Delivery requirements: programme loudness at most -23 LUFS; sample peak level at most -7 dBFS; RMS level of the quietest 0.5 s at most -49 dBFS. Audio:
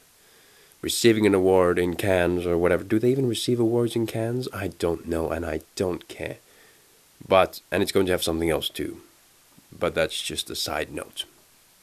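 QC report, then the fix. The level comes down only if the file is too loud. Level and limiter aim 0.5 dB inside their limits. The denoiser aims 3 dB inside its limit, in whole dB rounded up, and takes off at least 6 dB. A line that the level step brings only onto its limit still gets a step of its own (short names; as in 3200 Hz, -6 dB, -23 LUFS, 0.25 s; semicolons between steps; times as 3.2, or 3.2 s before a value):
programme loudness -24.0 LUFS: OK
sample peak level -4.5 dBFS: fail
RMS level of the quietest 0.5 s -57 dBFS: OK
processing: limiter -7.5 dBFS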